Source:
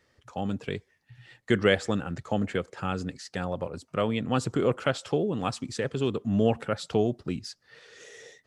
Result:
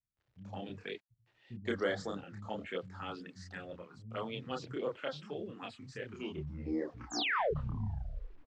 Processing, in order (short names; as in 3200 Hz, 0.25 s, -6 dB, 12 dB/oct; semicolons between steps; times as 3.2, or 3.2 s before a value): tape stop at the end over 2.70 s; tilt +2.5 dB/oct; vocal rider within 4 dB 2 s; envelope phaser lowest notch 170 Hz, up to 2600 Hz, full sweep at -23.5 dBFS; painted sound fall, 6.93–7.34, 380–7900 Hz -24 dBFS; chorus voices 2, 0.76 Hz, delay 29 ms, depth 2.7 ms; bit-crush 10-bit; air absorption 160 m; bands offset in time lows, highs 0.17 s, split 180 Hz; mismatched tape noise reduction decoder only; gain -4 dB